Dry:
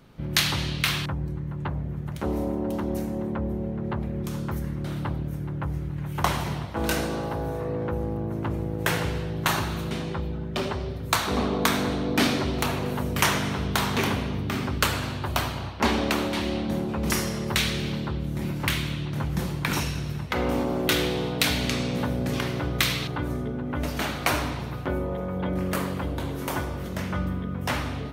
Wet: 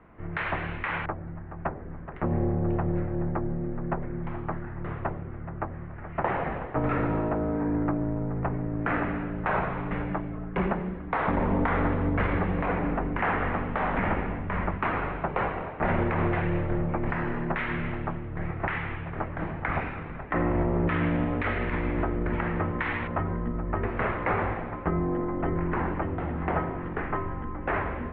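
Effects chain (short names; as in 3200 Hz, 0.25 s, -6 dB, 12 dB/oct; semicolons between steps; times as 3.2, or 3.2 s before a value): limiter -18 dBFS, peak gain reduction 9 dB; mistuned SSB -200 Hz 250–2300 Hz; gain +4.5 dB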